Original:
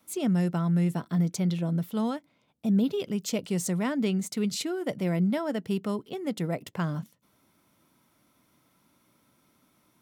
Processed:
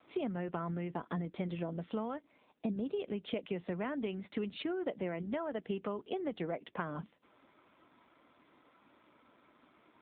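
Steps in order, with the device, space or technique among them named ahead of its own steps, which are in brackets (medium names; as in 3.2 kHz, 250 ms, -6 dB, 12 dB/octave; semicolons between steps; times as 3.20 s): voicemail (band-pass 320–3200 Hz; compression 6:1, threshold -41 dBFS, peak gain reduction 14.5 dB; trim +7.5 dB; AMR-NB 7.4 kbps 8 kHz)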